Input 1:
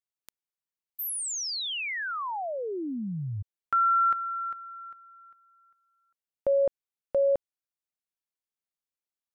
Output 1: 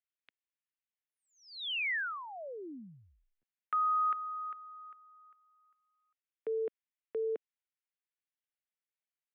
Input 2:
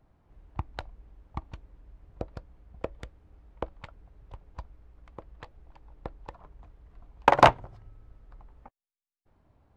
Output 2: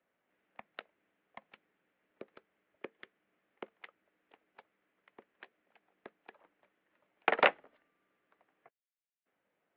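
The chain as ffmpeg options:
-af "equalizer=f=500:t=o:w=1:g=-5,equalizer=f=1000:t=o:w=1:g=-10,equalizer=f=2000:t=o:w=1:g=5,highpass=f=430:t=q:w=0.5412,highpass=f=430:t=q:w=1.307,lowpass=f=3500:t=q:w=0.5176,lowpass=f=3500:t=q:w=0.7071,lowpass=f=3500:t=q:w=1.932,afreqshift=-110,volume=0.708"

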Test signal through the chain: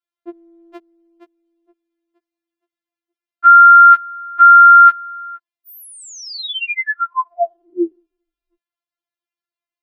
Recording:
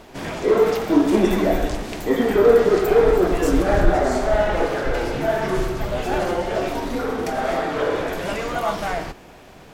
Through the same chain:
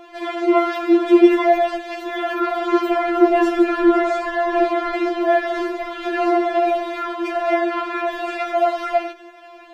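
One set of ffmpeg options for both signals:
-filter_complex "[0:a]acrossover=split=280 3800:gain=0.0631 1 0.126[s0][s1][s2];[s0][s1][s2]amix=inputs=3:normalize=0,afftfilt=real='re*4*eq(mod(b,16),0)':imag='im*4*eq(mod(b,16),0)':win_size=2048:overlap=0.75,volume=2.11"

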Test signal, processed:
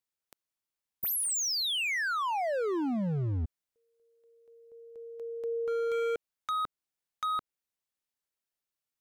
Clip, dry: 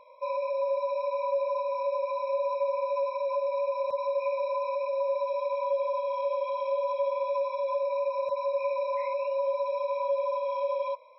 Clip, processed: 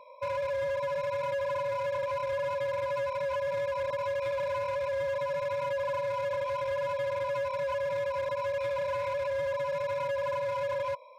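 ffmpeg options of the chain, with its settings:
-filter_complex "[0:a]acrossover=split=490[s0][s1];[s1]acompressor=threshold=0.0282:ratio=4[s2];[s0][s2]amix=inputs=2:normalize=0,volume=37.6,asoftclip=hard,volume=0.0266,volume=1.33"

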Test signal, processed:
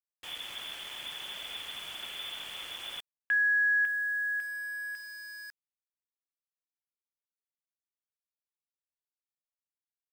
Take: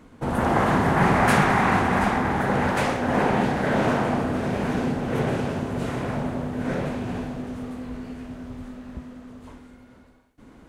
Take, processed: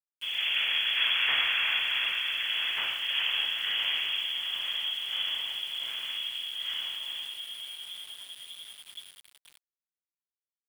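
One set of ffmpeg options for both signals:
-af "bandreject=f=68.69:t=h:w=4,bandreject=f=137.38:t=h:w=4,bandreject=f=206.07:t=h:w=4,bandreject=f=274.76:t=h:w=4,bandreject=f=343.45:t=h:w=4,bandreject=f=412.14:t=h:w=4,bandreject=f=480.83:t=h:w=4,bandreject=f=549.52:t=h:w=4,bandreject=f=618.21:t=h:w=4,bandreject=f=686.9:t=h:w=4,bandreject=f=755.59:t=h:w=4,bandreject=f=824.28:t=h:w=4,bandreject=f=892.97:t=h:w=4,bandreject=f=961.66:t=h:w=4,bandreject=f=1030.35:t=h:w=4,bandreject=f=1099.04:t=h:w=4,bandreject=f=1167.73:t=h:w=4,bandreject=f=1236.42:t=h:w=4,bandreject=f=1305.11:t=h:w=4,bandreject=f=1373.8:t=h:w=4,bandreject=f=1442.49:t=h:w=4,bandreject=f=1511.18:t=h:w=4,bandreject=f=1579.87:t=h:w=4,bandreject=f=1648.56:t=h:w=4,bandreject=f=1717.25:t=h:w=4,bandreject=f=1785.94:t=h:w=4,bandreject=f=1854.63:t=h:w=4,bandreject=f=1923.32:t=h:w=4,bandreject=f=1992.01:t=h:w=4,bandreject=f=2060.7:t=h:w=4,bandreject=f=2129.39:t=h:w=4,bandreject=f=2198.08:t=h:w=4,bandreject=f=2266.77:t=h:w=4,bandreject=f=2335.46:t=h:w=4,bandreject=f=2404.15:t=h:w=4,bandreject=f=2472.84:t=h:w=4,bandreject=f=2541.53:t=h:w=4,lowpass=f=3000:t=q:w=0.5098,lowpass=f=3000:t=q:w=0.6013,lowpass=f=3000:t=q:w=0.9,lowpass=f=3000:t=q:w=2.563,afreqshift=-3500,aeval=exprs='val(0)*gte(abs(val(0)),0.0158)':c=same,volume=0.422"

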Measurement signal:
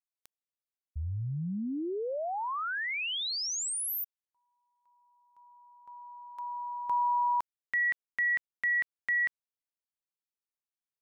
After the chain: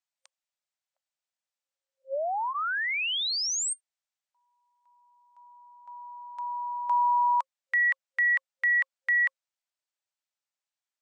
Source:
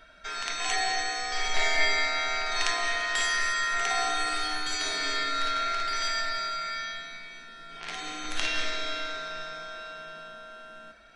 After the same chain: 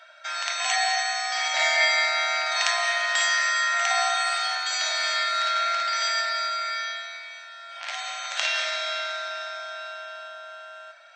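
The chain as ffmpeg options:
-af "afftfilt=real='re*between(b*sr/4096,530,8700)':imag='im*between(b*sr/4096,530,8700)':win_size=4096:overlap=0.75,bandreject=f=1100:w=17,volume=1.68"

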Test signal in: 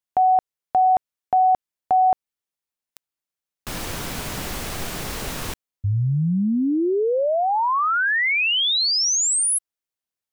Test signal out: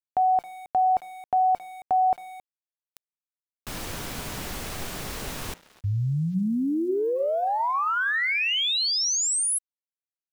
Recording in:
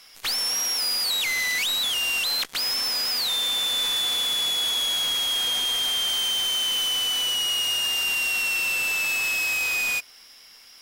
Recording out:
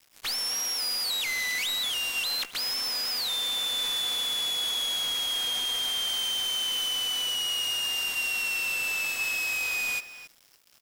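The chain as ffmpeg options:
-filter_complex "[0:a]bandreject=f=173.9:t=h:w=4,bandreject=f=347.8:t=h:w=4,bandreject=f=521.7:t=h:w=4,bandreject=f=695.6:t=h:w=4,bandreject=f=869.5:t=h:w=4,bandreject=f=1043.4:t=h:w=4,bandreject=f=1217.3:t=h:w=4,bandreject=f=1391.2:t=h:w=4,bandreject=f=1565.1:t=h:w=4,bandreject=f=1739:t=h:w=4,bandreject=f=1912.9:t=h:w=4,bandreject=f=2086.8:t=h:w=4,bandreject=f=2260.7:t=h:w=4,bandreject=f=2434.6:t=h:w=4,bandreject=f=2608.5:t=h:w=4,bandreject=f=2782.4:t=h:w=4,asplit=2[s0][s1];[s1]adelay=270,highpass=300,lowpass=3400,asoftclip=type=hard:threshold=0.0841,volume=0.2[s2];[s0][s2]amix=inputs=2:normalize=0,aeval=exprs='val(0)*gte(abs(val(0)),0.00708)':c=same,volume=0.596"

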